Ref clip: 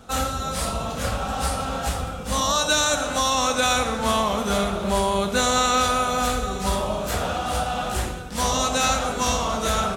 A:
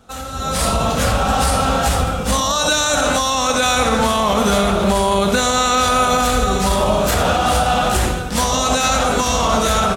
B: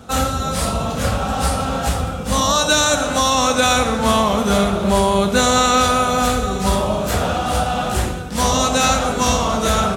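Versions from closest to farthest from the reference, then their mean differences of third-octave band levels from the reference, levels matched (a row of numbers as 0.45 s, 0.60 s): B, A; 1.5 dB, 2.5 dB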